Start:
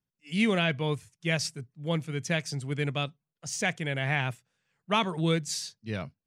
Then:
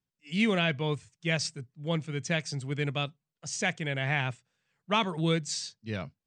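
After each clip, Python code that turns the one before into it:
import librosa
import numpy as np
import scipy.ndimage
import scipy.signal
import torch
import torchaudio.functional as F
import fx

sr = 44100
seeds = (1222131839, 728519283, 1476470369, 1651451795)

y = scipy.signal.sosfilt(scipy.signal.ellip(4, 1.0, 40, 8400.0, 'lowpass', fs=sr, output='sos'), x)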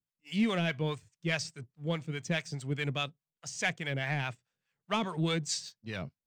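y = fx.leveller(x, sr, passes=1)
y = fx.harmonic_tremolo(y, sr, hz=4.8, depth_pct=70, crossover_hz=640.0)
y = y * librosa.db_to_amplitude(-2.5)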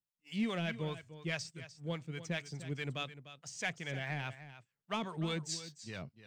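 y = x + 10.0 ** (-13.5 / 20.0) * np.pad(x, (int(299 * sr / 1000.0), 0))[:len(x)]
y = y * librosa.db_to_amplitude(-6.0)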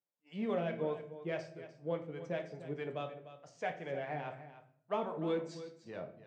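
y = fx.bandpass_q(x, sr, hz=550.0, q=1.4)
y = fx.room_shoebox(y, sr, seeds[0], volume_m3=76.0, walls='mixed', distance_m=0.41)
y = y * librosa.db_to_amplitude(6.0)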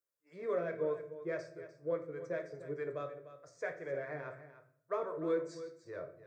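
y = fx.fixed_phaser(x, sr, hz=800.0, stages=6)
y = y * librosa.db_to_amplitude(2.5)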